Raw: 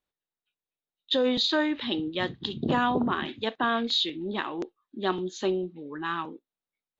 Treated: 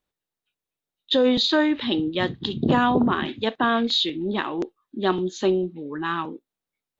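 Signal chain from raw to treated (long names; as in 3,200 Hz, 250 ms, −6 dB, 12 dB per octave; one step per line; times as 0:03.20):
low-shelf EQ 490 Hz +4 dB
level +3.5 dB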